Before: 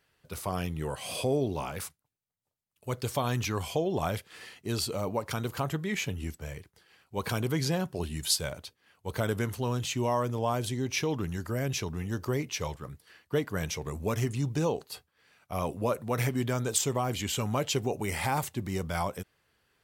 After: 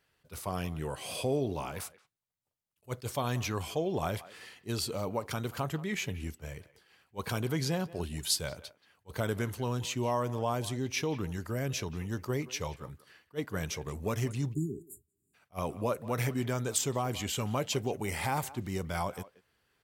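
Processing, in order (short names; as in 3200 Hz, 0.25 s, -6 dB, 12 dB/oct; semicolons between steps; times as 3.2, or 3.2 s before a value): speakerphone echo 0.18 s, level -17 dB; spectral delete 14.54–15.34, 410–6800 Hz; attack slew limiter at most 450 dB/s; gain -2.5 dB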